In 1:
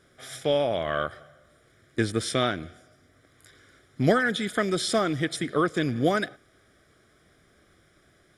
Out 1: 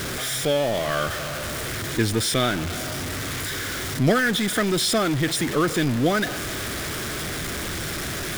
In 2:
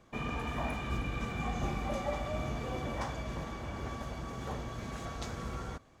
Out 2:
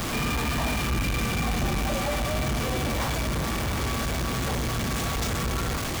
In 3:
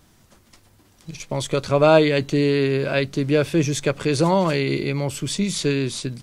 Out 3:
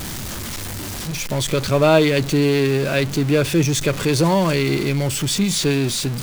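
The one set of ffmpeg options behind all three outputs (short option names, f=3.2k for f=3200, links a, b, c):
-af "aeval=exprs='val(0)+0.5*0.0596*sgn(val(0))':c=same,equalizer=f=710:w=0.64:g=-3.5,volume=2dB"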